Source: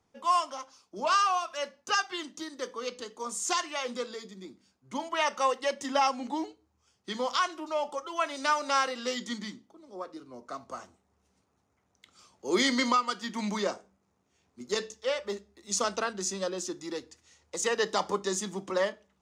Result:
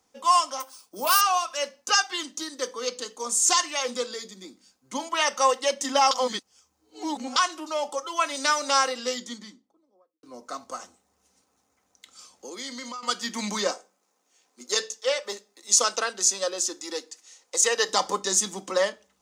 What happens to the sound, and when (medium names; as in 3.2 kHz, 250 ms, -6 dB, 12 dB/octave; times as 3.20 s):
0.60–1.21 s: careless resampling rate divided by 3×, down none, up hold
6.11–7.36 s: reverse
8.63–10.23 s: studio fade out
10.76–13.03 s: compression, threshold -40 dBFS
13.71–17.89 s: high-pass 340 Hz
whole clip: tone controls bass -8 dB, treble +9 dB; comb 3.9 ms, depth 36%; trim +3.5 dB